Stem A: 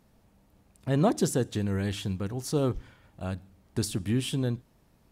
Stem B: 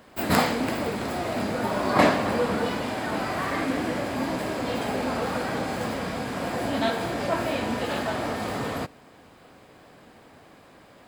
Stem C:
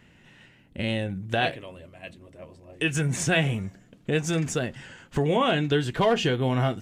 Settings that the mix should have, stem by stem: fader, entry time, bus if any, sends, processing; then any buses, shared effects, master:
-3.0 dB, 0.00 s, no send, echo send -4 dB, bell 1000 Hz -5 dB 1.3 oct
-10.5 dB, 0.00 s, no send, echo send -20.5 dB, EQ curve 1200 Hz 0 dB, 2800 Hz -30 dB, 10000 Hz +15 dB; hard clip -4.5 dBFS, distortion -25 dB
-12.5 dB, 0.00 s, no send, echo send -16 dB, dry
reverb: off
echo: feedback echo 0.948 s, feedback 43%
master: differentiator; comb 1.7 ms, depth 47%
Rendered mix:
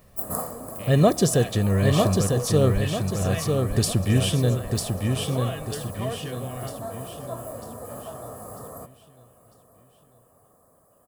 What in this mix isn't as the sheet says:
stem A -3.0 dB -> +7.0 dB; stem B: missing hard clip -4.5 dBFS, distortion -25 dB; master: missing differentiator

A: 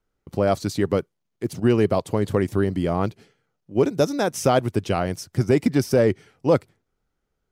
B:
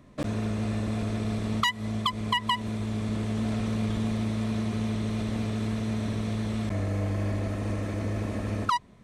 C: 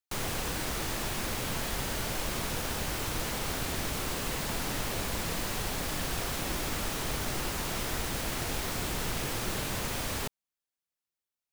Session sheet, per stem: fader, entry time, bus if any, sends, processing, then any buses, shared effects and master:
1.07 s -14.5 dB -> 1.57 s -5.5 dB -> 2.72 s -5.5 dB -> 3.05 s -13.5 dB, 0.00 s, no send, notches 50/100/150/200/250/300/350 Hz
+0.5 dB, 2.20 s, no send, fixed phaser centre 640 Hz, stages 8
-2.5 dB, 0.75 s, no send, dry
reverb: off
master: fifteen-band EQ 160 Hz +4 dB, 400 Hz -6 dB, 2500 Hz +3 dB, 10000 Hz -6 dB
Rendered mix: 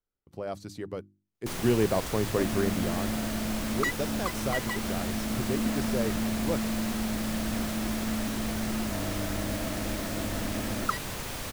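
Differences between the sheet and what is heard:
stem C: entry 0.75 s -> 1.35 s; master: missing fifteen-band EQ 160 Hz +4 dB, 400 Hz -6 dB, 2500 Hz +3 dB, 10000 Hz -6 dB

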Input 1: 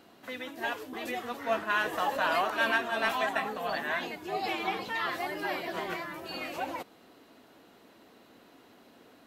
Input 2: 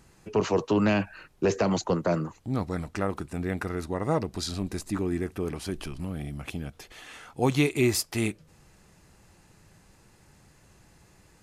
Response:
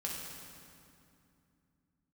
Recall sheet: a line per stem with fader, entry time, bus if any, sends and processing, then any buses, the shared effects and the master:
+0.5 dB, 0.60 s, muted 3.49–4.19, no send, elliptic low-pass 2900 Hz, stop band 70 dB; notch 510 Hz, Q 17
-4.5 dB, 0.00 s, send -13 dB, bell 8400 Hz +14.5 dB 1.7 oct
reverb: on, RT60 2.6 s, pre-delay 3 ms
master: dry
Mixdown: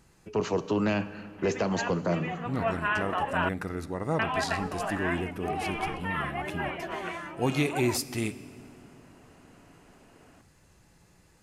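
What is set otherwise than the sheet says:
stem 1: entry 0.60 s -> 1.15 s; stem 2: missing bell 8400 Hz +14.5 dB 1.7 oct

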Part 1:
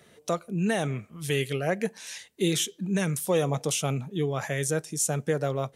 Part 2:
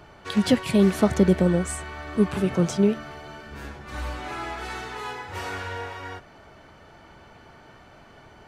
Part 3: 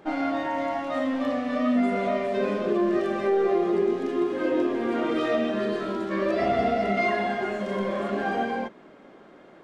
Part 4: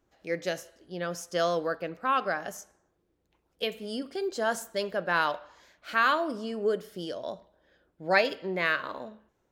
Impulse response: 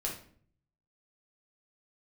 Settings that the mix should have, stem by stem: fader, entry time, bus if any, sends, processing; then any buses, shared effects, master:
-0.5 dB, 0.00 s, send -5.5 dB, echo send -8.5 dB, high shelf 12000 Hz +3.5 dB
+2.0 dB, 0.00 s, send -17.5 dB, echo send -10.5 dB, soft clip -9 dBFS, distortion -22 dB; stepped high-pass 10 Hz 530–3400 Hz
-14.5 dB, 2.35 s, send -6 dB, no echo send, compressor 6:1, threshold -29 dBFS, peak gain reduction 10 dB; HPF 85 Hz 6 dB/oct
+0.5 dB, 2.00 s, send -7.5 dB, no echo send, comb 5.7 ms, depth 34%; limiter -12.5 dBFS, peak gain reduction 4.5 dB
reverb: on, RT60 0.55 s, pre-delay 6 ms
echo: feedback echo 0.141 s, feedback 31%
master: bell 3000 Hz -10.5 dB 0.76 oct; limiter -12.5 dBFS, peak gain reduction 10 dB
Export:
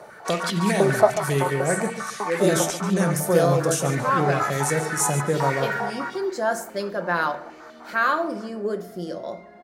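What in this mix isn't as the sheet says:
stem 3: send off; master: missing limiter -12.5 dBFS, peak gain reduction 10 dB

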